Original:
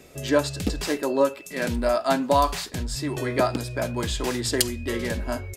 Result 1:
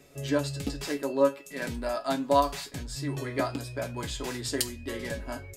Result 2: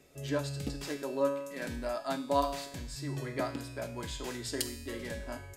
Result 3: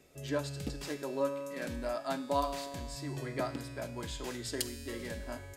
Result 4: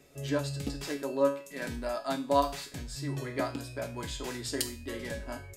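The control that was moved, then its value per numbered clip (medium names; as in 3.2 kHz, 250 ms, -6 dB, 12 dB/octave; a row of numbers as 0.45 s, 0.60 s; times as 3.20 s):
feedback comb, decay: 0.15 s, 0.91 s, 2.1 s, 0.4 s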